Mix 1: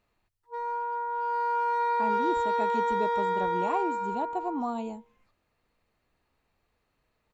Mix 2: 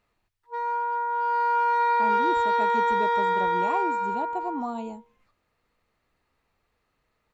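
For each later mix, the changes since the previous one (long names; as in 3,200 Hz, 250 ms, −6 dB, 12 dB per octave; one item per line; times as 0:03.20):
background: add parametric band 2,200 Hz +7.5 dB 2.9 octaves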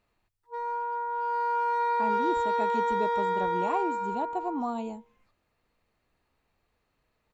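background: add parametric band 2,200 Hz −7.5 dB 2.9 octaves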